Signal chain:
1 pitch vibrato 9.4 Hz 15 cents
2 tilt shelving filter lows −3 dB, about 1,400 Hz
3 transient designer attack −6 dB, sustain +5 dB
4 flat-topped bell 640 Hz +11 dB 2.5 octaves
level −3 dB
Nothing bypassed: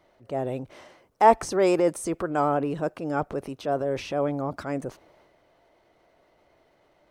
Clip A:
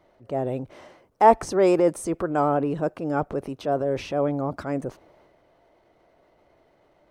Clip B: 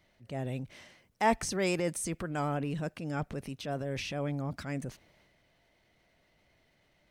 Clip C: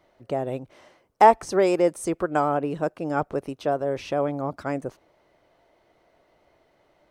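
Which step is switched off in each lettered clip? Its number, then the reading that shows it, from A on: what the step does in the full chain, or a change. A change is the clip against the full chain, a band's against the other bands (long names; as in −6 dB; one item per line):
2, change in integrated loudness +2.0 LU
4, 500 Hz band −9.5 dB
3, 8 kHz band −2.0 dB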